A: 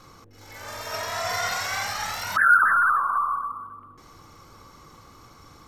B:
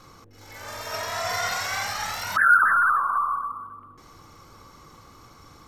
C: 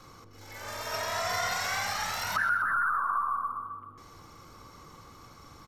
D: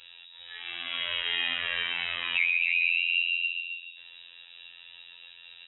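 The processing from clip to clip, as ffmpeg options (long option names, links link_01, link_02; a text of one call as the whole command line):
ffmpeg -i in.wav -af anull out.wav
ffmpeg -i in.wav -filter_complex "[0:a]acrossover=split=280[link_01][link_02];[link_02]acompressor=threshold=-25dB:ratio=4[link_03];[link_01][link_03]amix=inputs=2:normalize=0,asplit=2[link_04][link_05];[link_05]adelay=129,lowpass=frequency=4300:poles=1,volume=-10dB,asplit=2[link_06][link_07];[link_07]adelay=129,lowpass=frequency=4300:poles=1,volume=0.47,asplit=2[link_08][link_09];[link_09]adelay=129,lowpass=frequency=4300:poles=1,volume=0.47,asplit=2[link_10][link_11];[link_11]adelay=129,lowpass=frequency=4300:poles=1,volume=0.47,asplit=2[link_12][link_13];[link_13]adelay=129,lowpass=frequency=4300:poles=1,volume=0.47[link_14];[link_06][link_08][link_10][link_12][link_14]amix=inputs=5:normalize=0[link_15];[link_04][link_15]amix=inputs=2:normalize=0,volume=-2dB" out.wav
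ffmpeg -i in.wav -af "lowpass=frequency=3300:width_type=q:width=0.5098,lowpass=frequency=3300:width_type=q:width=0.6013,lowpass=frequency=3300:width_type=q:width=0.9,lowpass=frequency=3300:width_type=q:width=2.563,afreqshift=-3900,afftfilt=real='hypot(re,im)*cos(PI*b)':imag='0':win_size=2048:overlap=0.75,volume=5dB" out.wav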